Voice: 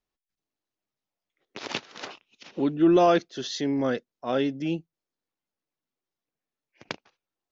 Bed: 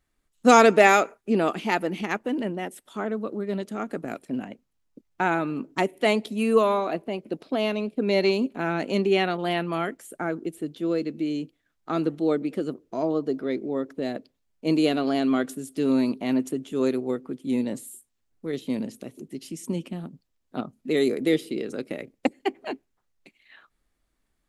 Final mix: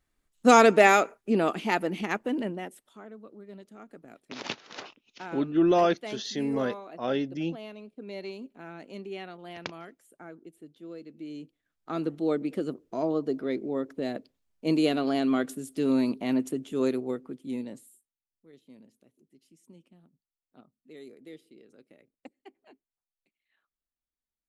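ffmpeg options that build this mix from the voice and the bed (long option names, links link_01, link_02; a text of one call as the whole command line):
ffmpeg -i stem1.wav -i stem2.wav -filter_complex "[0:a]adelay=2750,volume=-3dB[link_01];[1:a]volume=12.5dB,afade=type=out:start_time=2.37:duration=0.63:silence=0.177828,afade=type=in:start_time=11.05:duration=1.46:silence=0.188365,afade=type=out:start_time=16.85:duration=1.28:silence=0.0794328[link_02];[link_01][link_02]amix=inputs=2:normalize=0" out.wav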